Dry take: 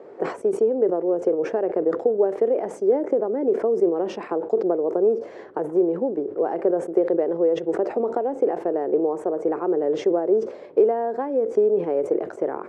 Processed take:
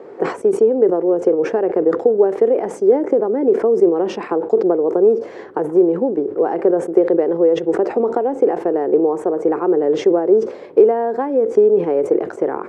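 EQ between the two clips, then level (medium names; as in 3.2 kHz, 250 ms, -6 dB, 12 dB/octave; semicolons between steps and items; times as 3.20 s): peaking EQ 620 Hz -6 dB 0.29 oct; +7.0 dB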